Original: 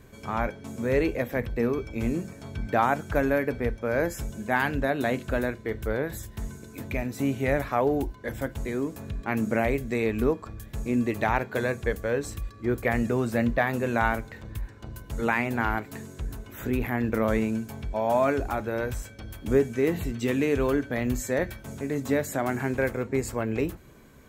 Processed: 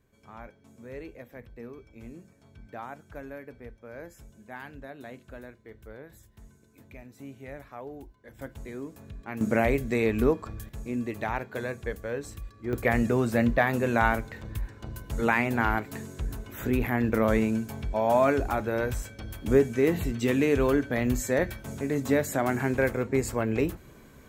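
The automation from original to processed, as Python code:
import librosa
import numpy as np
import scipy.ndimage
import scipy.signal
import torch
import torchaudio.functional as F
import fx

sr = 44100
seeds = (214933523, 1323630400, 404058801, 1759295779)

y = fx.gain(x, sr, db=fx.steps((0.0, -17.0), (8.39, -9.0), (9.41, 1.0), (10.69, -6.0), (12.73, 1.0)))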